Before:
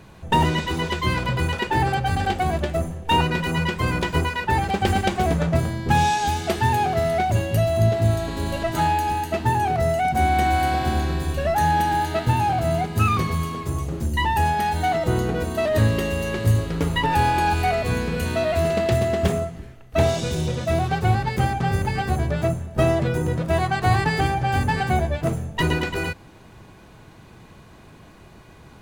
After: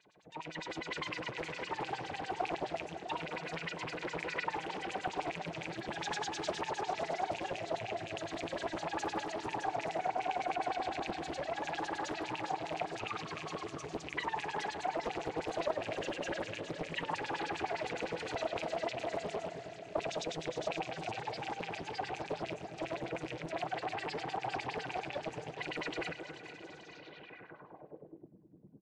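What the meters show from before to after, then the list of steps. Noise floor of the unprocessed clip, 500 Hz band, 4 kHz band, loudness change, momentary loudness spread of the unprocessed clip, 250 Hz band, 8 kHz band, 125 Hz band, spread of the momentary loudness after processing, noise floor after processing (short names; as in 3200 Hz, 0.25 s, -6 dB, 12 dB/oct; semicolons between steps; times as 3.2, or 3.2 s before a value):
-47 dBFS, -14.0 dB, -12.5 dB, -16.5 dB, 5 LU, -17.5 dB, -14.5 dB, -28.0 dB, 6 LU, -54 dBFS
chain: rattling part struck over -20 dBFS, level -14 dBFS; bell 1200 Hz -6 dB 0.7 oct; comb 6.6 ms, depth 47%; compressor, threshold -24 dBFS, peak gain reduction 11 dB; limiter -22 dBFS, peak gain reduction 8.5 dB; AGC gain up to 10 dB; LFO band-pass sine 9.8 Hz 370–5900 Hz; air absorption 71 m; echo with dull and thin repeats by turns 0.218 s, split 1600 Hz, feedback 77%, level -8 dB; low-pass sweep 8000 Hz -> 220 Hz, 26.79–28.34; Doppler distortion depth 0.84 ms; gain -8 dB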